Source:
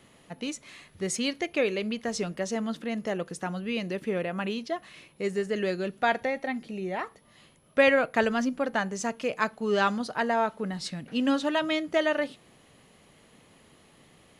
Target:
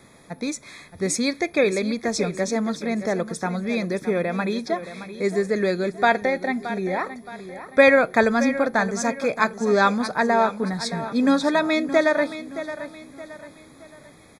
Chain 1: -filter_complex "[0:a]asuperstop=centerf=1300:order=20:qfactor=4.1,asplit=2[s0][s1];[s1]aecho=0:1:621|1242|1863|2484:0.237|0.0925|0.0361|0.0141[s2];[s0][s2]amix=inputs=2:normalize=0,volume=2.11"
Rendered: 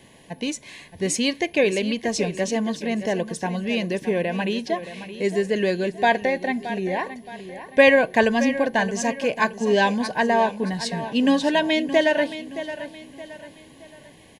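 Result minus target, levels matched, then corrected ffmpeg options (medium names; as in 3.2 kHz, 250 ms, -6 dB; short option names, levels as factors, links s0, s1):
4 kHz band +4.0 dB
-filter_complex "[0:a]asuperstop=centerf=2900:order=20:qfactor=4.1,asplit=2[s0][s1];[s1]aecho=0:1:621|1242|1863|2484:0.237|0.0925|0.0361|0.0141[s2];[s0][s2]amix=inputs=2:normalize=0,volume=2.11"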